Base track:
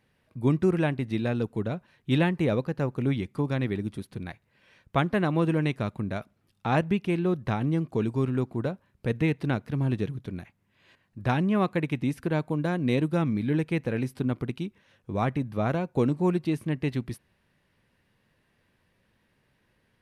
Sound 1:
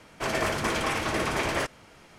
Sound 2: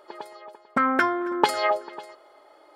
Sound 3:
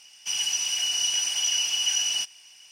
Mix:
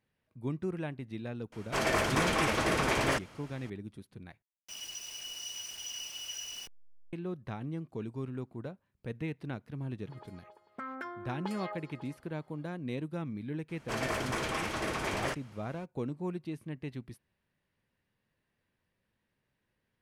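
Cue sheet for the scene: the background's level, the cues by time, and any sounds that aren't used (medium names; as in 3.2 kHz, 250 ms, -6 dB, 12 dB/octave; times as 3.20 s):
base track -12 dB
1.52 s: add 1 -1.5 dB
4.42 s: replace with 3 -16 dB + send-on-delta sampling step -30 dBFS
10.02 s: add 2 -13 dB + compression 1.5:1, threshold -36 dBFS
13.68 s: add 1 -6.5 dB, fades 0.02 s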